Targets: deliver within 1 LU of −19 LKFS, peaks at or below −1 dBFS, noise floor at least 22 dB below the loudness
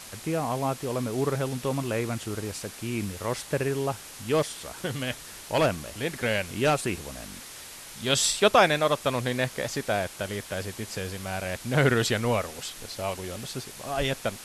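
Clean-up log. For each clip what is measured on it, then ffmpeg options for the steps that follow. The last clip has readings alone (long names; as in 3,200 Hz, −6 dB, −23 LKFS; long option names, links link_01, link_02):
background noise floor −44 dBFS; target noise floor −50 dBFS; integrated loudness −28.0 LKFS; sample peak −7.0 dBFS; target loudness −19.0 LKFS
→ -af "afftdn=noise_reduction=6:noise_floor=-44"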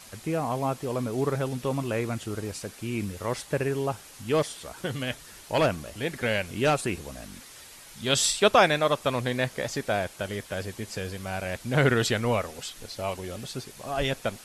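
background noise floor −48 dBFS; target noise floor −50 dBFS
→ -af "afftdn=noise_reduction=6:noise_floor=-48"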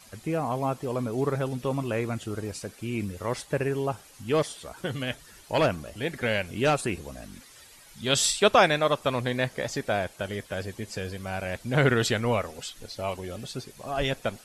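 background noise floor −52 dBFS; integrated loudness −28.0 LKFS; sample peak −7.0 dBFS; target loudness −19.0 LKFS
→ -af "volume=9dB,alimiter=limit=-1dB:level=0:latency=1"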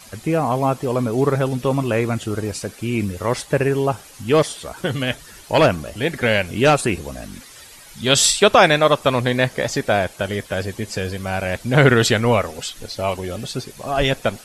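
integrated loudness −19.5 LKFS; sample peak −1.0 dBFS; background noise floor −43 dBFS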